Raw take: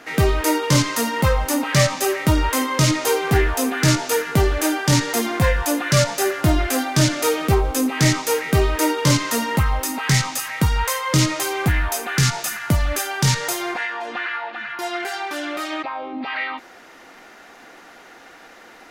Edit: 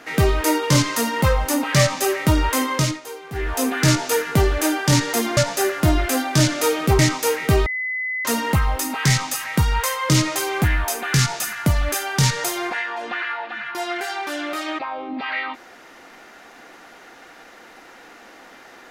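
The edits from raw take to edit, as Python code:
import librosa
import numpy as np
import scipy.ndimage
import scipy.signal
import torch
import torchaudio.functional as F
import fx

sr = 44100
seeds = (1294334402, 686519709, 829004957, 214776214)

y = fx.edit(x, sr, fx.fade_down_up(start_s=2.72, length_s=0.9, db=-15.5, fade_s=0.29),
    fx.cut(start_s=5.37, length_s=0.61),
    fx.cut(start_s=7.6, length_s=0.43),
    fx.bleep(start_s=8.7, length_s=0.59, hz=2020.0, db=-22.5), tone=tone)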